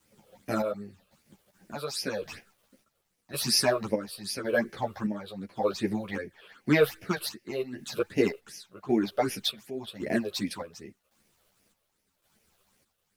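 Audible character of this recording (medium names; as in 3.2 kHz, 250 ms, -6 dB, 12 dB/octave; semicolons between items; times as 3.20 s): phasing stages 8, 2.6 Hz, lowest notch 240–1200 Hz; a quantiser's noise floor 12-bit, dither none; chopped level 0.9 Hz, depth 60%, duty 55%; a shimmering, thickened sound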